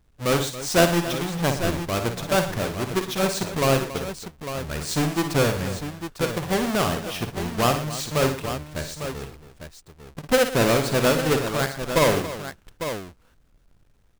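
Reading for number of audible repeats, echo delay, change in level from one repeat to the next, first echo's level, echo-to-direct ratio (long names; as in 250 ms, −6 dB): 4, 52 ms, repeats not evenly spaced, −10.0 dB, −4.5 dB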